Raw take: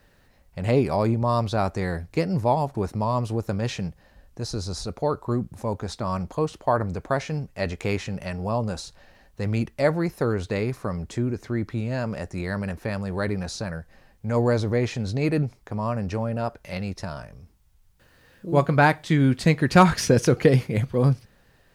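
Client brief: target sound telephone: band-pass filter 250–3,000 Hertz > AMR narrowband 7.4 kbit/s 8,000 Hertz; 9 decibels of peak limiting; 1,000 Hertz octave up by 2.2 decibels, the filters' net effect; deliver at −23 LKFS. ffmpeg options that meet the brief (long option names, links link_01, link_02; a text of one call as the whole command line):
ffmpeg -i in.wav -af "equalizer=frequency=1000:width_type=o:gain=3,alimiter=limit=-12dB:level=0:latency=1,highpass=250,lowpass=3000,volume=6dB" -ar 8000 -c:a libopencore_amrnb -b:a 7400 out.amr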